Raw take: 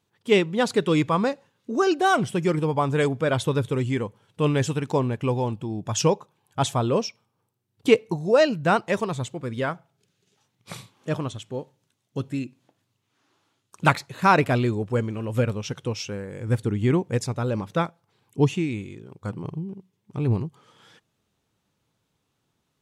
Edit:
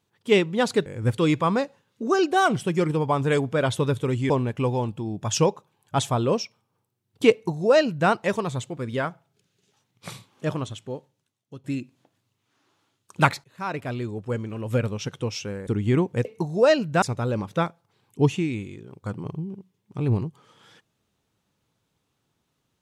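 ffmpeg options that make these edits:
-filter_complex "[0:a]asplit=9[s0][s1][s2][s3][s4][s5][s6][s7][s8];[s0]atrim=end=0.862[s9];[s1]atrim=start=16.308:end=16.632[s10];[s2]atrim=start=0.858:end=3.982[s11];[s3]atrim=start=4.938:end=12.28,asetpts=PTS-STARTPTS,afade=t=out:st=6.432:d=0.91:silence=0.158489[s12];[s4]atrim=start=12.28:end=14.08,asetpts=PTS-STARTPTS,afade=t=in:d=0.004:c=hsin:silence=0.158489,afade=t=out:st=1.796:d=0.004:c=hsin:silence=0.0841395[s13];[s5]atrim=start=14.08:end=16.312,asetpts=PTS-STARTPTS,afade=t=in:d=1.48:silence=0.0841395[s14];[s6]atrim=start=16.628:end=17.212[s15];[s7]atrim=start=7.958:end=8.732[s16];[s8]atrim=start=17.208[s17];[s9][s10]acrossfade=d=0.004:c1=hsin:c2=hsin[s18];[s18][s11]acrossfade=d=0.004:c1=hsin:c2=hsin[s19];[s12][s13][s14]concat=n=3:v=0:a=1[s20];[s19][s20]acrossfade=d=0.004:c1=hsin:c2=hsin[s21];[s21][s15]acrossfade=d=0.004:c1=hsin:c2=hsin[s22];[s22][s16]acrossfade=d=0.004:c1=hsin:c2=hsin[s23];[s23][s17]acrossfade=d=0.004:c1=hsin:c2=hsin"

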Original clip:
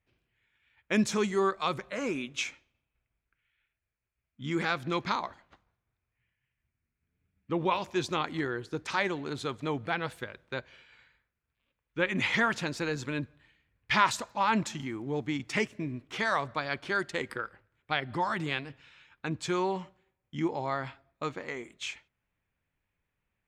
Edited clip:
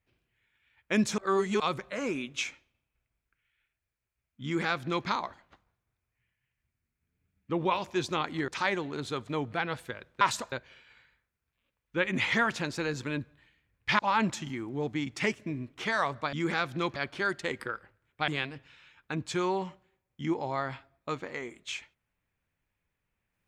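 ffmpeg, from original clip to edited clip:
-filter_complex "[0:a]asplit=10[s0][s1][s2][s3][s4][s5][s6][s7][s8][s9];[s0]atrim=end=1.182[s10];[s1]atrim=start=1.178:end=1.602,asetpts=PTS-STARTPTS,areverse[s11];[s2]atrim=start=1.598:end=8.482[s12];[s3]atrim=start=8.808:end=10.542[s13];[s4]atrim=start=14.008:end=14.322[s14];[s5]atrim=start=10.538:end=14.012[s15];[s6]atrim=start=14.318:end=16.662[s16];[s7]atrim=start=4.438:end=5.072[s17];[s8]atrim=start=16.658:end=17.982[s18];[s9]atrim=start=18.418[s19];[s10][s11]acrossfade=d=0.004:c1=hsin:c2=hsin[s20];[s20][s12]acrossfade=d=0.004:c1=hsin:c2=hsin[s21];[s21][s13]acrossfade=d=0.004:c1=hsin:c2=hsin[s22];[s22][s14]acrossfade=d=0.004:c1=hsin:c2=hsin[s23];[s23][s15]acrossfade=d=0.004:c1=hsin:c2=hsin[s24];[s24][s16]acrossfade=d=0.004:c1=hsin:c2=hsin[s25];[s25][s17]acrossfade=d=0.004:c1=hsin:c2=hsin[s26];[s26][s18]acrossfade=d=0.004:c1=hsin:c2=hsin[s27];[s27][s19]acrossfade=d=0.004:c1=hsin:c2=hsin"

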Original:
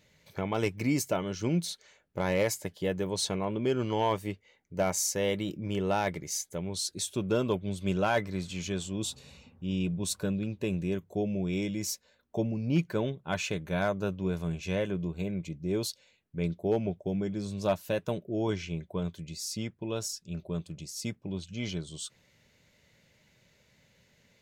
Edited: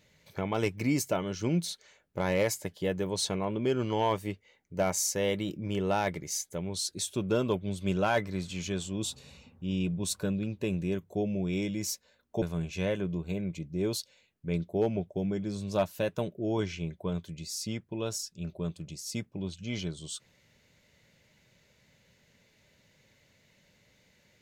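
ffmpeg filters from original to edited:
-filter_complex "[0:a]asplit=2[s0][s1];[s0]atrim=end=12.422[s2];[s1]atrim=start=14.318[s3];[s2][s3]acrossfade=d=0.004:c1=hsin:c2=hsin"

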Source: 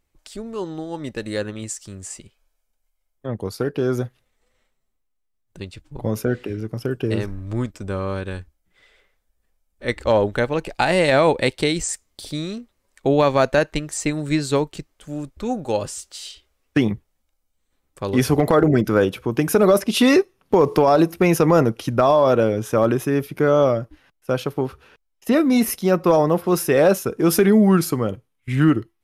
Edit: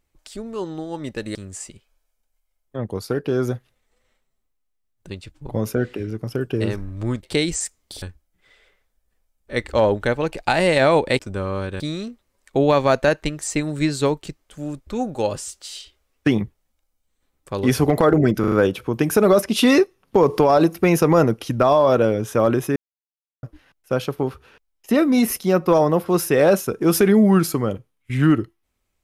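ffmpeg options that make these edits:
-filter_complex "[0:a]asplit=11[s0][s1][s2][s3][s4][s5][s6][s7][s8][s9][s10];[s0]atrim=end=1.352[s11];[s1]atrim=start=1.848:end=7.732[s12];[s2]atrim=start=11.508:end=12.302[s13];[s3]atrim=start=8.338:end=11.512[s14];[s4]atrim=start=7.728:end=8.342[s15];[s5]atrim=start=12.298:end=18.942[s16];[s6]atrim=start=18.898:end=18.942[s17];[s7]atrim=start=18.898:end=18.942[s18];[s8]atrim=start=18.898:end=23.14,asetpts=PTS-STARTPTS,afade=t=out:st=4.238:d=0.004:c=hsin[s19];[s9]atrim=start=23.14:end=23.81,asetpts=PTS-STARTPTS,volume=0[s20];[s10]atrim=start=23.81,asetpts=PTS-STARTPTS,afade=t=in:d=0.004:c=hsin[s21];[s11][s12]acrossfade=d=0.004:c1=hsin:c2=hsin[s22];[s22][s13]acrossfade=d=0.004:c1=hsin:c2=hsin[s23];[s23][s14]acrossfade=d=0.004:c1=hsin:c2=hsin[s24];[s24][s15]acrossfade=d=0.004:c1=hsin:c2=hsin[s25];[s25][s16]acrossfade=d=0.004:c1=hsin:c2=hsin[s26];[s26][s17]acrossfade=d=0.004:c1=hsin:c2=hsin[s27];[s27][s18]acrossfade=d=0.004:c1=hsin:c2=hsin[s28];[s19][s20][s21]concat=n=3:v=0:a=1[s29];[s28][s29]acrossfade=d=0.004:c1=hsin:c2=hsin"

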